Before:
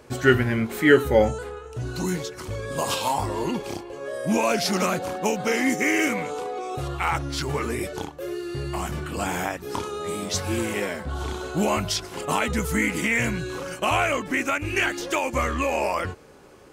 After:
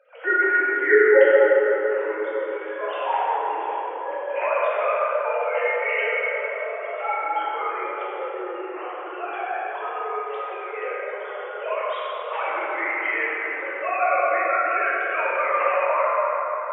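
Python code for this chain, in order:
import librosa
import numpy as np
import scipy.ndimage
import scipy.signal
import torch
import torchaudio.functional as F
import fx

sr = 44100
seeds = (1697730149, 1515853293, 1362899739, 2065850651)

y = fx.sine_speech(x, sr)
y = scipy.signal.sosfilt(scipy.signal.butter(4, 490.0, 'highpass', fs=sr, output='sos'), y)
y = fx.rev_plate(y, sr, seeds[0], rt60_s=4.8, hf_ratio=0.4, predelay_ms=0, drr_db=-9.5)
y = y * librosa.db_to_amplitude(-5.5)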